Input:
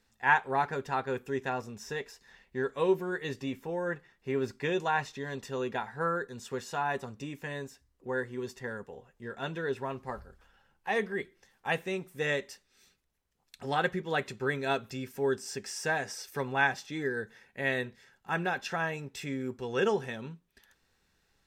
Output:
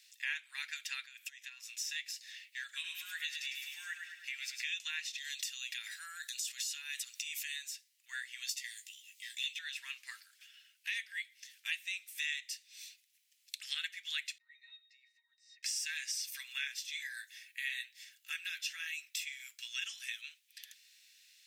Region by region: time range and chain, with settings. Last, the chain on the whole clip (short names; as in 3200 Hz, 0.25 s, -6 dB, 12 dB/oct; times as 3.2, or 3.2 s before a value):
1.04–1.67 bell 980 Hz +6.5 dB 0.28 oct + compressor 10:1, threshold -44 dBFS
2.63–4.68 compressor 2:1, threshold -32 dBFS + feedback echo 0.104 s, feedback 51%, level -6 dB
5.18–7.56 high shelf 3100 Hz +11 dB + compressor 2:1, threshold -43 dBFS + transient shaper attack -1 dB, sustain +5 dB
8.49–9.59 elliptic high-pass 2000 Hz + high shelf 2600 Hz +9.5 dB + doubler 16 ms -7.5 dB
14.38–15.63 LPF 7900 Hz + compressor 10:1, threshold -34 dBFS + octave resonator A#, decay 0.17 s
16.38–20.24 high shelf 11000 Hz +9.5 dB + flange 1.1 Hz, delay 1.6 ms, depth 8.6 ms, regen -61%
whole clip: steep high-pass 2200 Hz 36 dB/oct; compressor 3:1, threshold -53 dBFS; gain +14 dB